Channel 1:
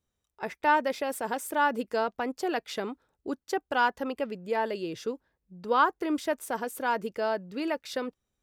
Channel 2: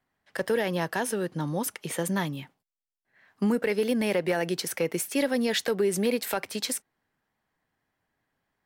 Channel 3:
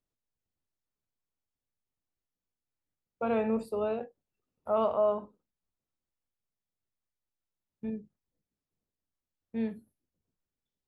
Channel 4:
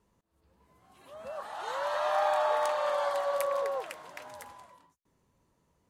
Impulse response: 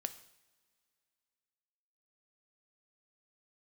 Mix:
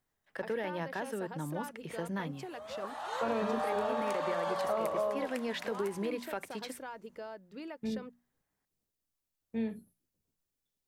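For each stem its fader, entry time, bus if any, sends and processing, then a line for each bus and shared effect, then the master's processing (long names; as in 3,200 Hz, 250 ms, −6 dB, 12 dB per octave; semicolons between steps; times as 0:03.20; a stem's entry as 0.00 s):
−9.5 dB, 0.00 s, no send, high-shelf EQ 8,700 Hz −5.5 dB; downward compressor, threshold −31 dBFS, peak gain reduction 13 dB
−8.0 dB, 0.00 s, no send, bass and treble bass 0 dB, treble −12 dB
+0.5 dB, 0.00 s, no send, high-shelf EQ 5,500 Hz +8 dB
−1.0 dB, 1.45 s, no send, no processing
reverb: not used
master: mains-hum notches 60/120/180/240 Hz; downward compressor 6 to 1, threshold −29 dBFS, peak gain reduction 8.5 dB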